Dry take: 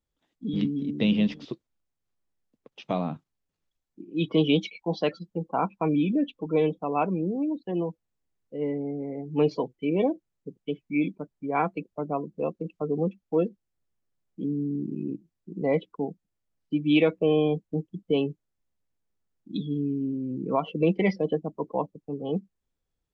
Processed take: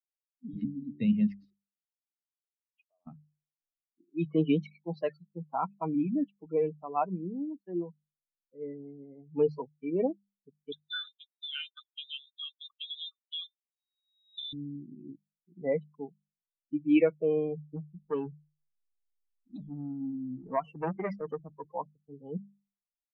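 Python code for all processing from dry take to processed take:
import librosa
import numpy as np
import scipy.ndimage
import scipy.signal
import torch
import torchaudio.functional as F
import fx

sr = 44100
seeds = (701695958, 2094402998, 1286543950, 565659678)

y = fx.chain(x, sr, fx.envelope_sharpen(power=2.0),
    fx.level_steps(step_db=11),
    fx.bandpass_q(hz=3000.0, q=1.3), at=(1.5, 3.07))
y = fx.chain(y, sr, fx.env_lowpass(base_hz=490.0, full_db=-25.5),
    fx.freq_invert(carrier_hz=3800),
    fx.band_squash(depth_pct=100), at=(10.72, 14.53))
y = fx.chain(y, sr, fx.law_mismatch(coded='mu'),
    fx.transformer_sat(knee_hz=800.0), at=(17.76, 21.73))
y = fx.bin_expand(y, sr, power=2.0)
y = scipy.signal.sosfilt(scipy.signal.butter(2, 1900.0, 'lowpass', fs=sr, output='sos'), y)
y = fx.hum_notches(y, sr, base_hz=50, count=4)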